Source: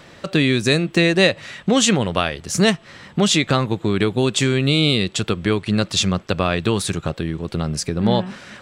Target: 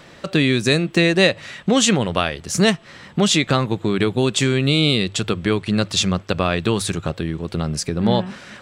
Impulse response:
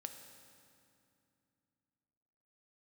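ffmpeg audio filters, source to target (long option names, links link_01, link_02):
-af "bandreject=frequency=50:width_type=h:width=6,bandreject=frequency=100:width_type=h:width=6"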